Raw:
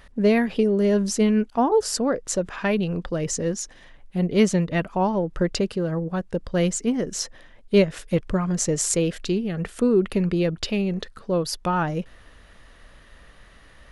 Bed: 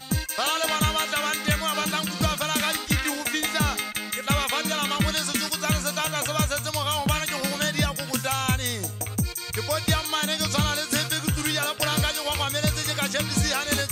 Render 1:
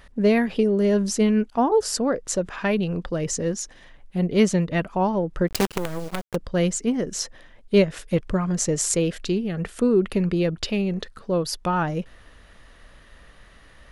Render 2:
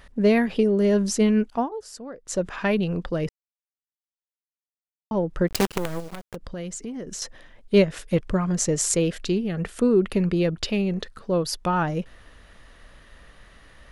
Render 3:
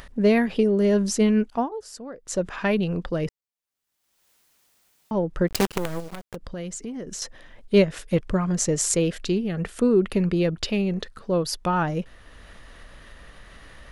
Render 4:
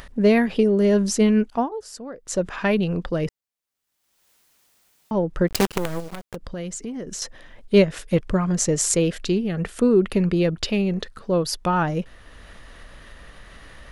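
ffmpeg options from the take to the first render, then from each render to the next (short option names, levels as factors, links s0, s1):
-filter_complex "[0:a]asplit=3[s0][s1][s2];[s0]afade=t=out:st=5.47:d=0.02[s3];[s1]acrusher=bits=4:dc=4:mix=0:aa=0.000001,afade=t=in:st=5.47:d=0.02,afade=t=out:st=6.34:d=0.02[s4];[s2]afade=t=in:st=6.34:d=0.02[s5];[s3][s4][s5]amix=inputs=3:normalize=0"
-filter_complex "[0:a]asettb=1/sr,asplit=3[s0][s1][s2];[s0]atrim=end=6.004[s3];[s1]atrim=start=6:end=7.22,asetpts=PTS-STARTPTS,afade=t=in:d=0.004:c=qsin,afade=t=out:st=1.216:d=0.004:c=qsin,acompressor=threshold=0.0282:ratio=5:attack=3.2:release=140:knee=1:detection=peak[s4];[s2]atrim=start=7.216[s5];[s3][s4]acrossfade=d=0.004:c1=hsin:c2=qsin[s6];[s6][s5]acrossfade=d=0.004:c1=qsin:c2=hsin,asplit=5[s7][s8][s9][s10][s11];[s7]atrim=end=1.7,asetpts=PTS-STARTPTS,afade=t=out:st=1.54:d=0.16:silence=0.177828[s12];[s8]atrim=start=1.7:end=2.24,asetpts=PTS-STARTPTS,volume=0.178[s13];[s9]atrim=start=2.24:end=3.29,asetpts=PTS-STARTPTS,afade=t=in:d=0.16:silence=0.177828,afade=t=out:st=1.046:d=0.004:c=hsin[s14];[s10]atrim=start=3.29:end=5.11,asetpts=PTS-STARTPTS,volume=0[s15];[s11]atrim=start=5.11,asetpts=PTS-STARTPTS,afade=t=in:d=0.004:c=hsin[s16];[s12][s13][s14][s15][s16]concat=n=5:v=0:a=1"
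-af "acompressor=mode=upward:threshold=0.0126:ratio=2.5"
-af "volume=1.26"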